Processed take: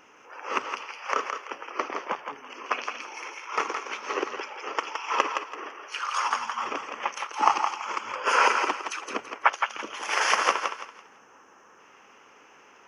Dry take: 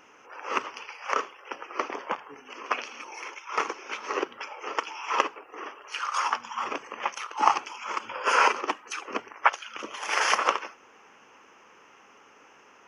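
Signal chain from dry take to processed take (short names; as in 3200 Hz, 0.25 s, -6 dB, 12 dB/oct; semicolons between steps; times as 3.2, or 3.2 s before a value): spectral gain 11.04–11.79, 1900–5200 Hz -7 dB; on a send: thinning echo 0.167 s, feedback 30%, high-pass 560 Hz, level -5 dB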